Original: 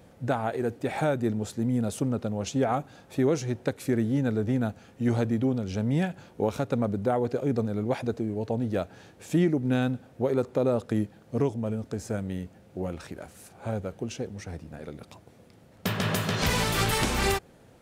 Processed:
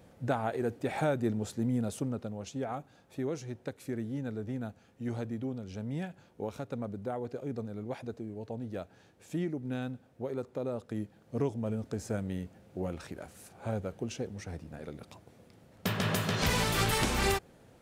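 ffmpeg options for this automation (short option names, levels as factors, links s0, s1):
-af "volume=1.58,afade=t=out:st=1.64:d=0.82:silence=0.446684,afade=t=in:st=10.89:d=0.89:silence=0.421697"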